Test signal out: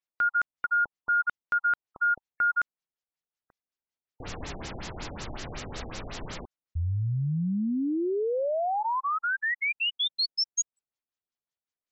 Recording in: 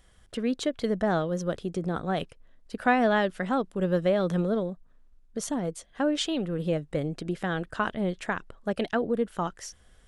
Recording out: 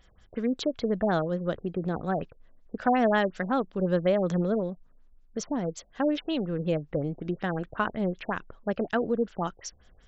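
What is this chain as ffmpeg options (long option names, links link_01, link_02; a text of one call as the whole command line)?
ffmpeg -i in.wav -af "highshelf=frequency=7000:gain=9.5,afftfilt=real='re*lt(b*sr/1024,810*pow(7900/810,0.5+0.5*sin(2*PI*5.4*pts/sr)))':imag='im*lt(b*sr/1024,810*pow(7900/810,0.5+0.5*sin(2*PI*5.4*pts/sr)))':win_size=1024:overlap=0.75" out.wav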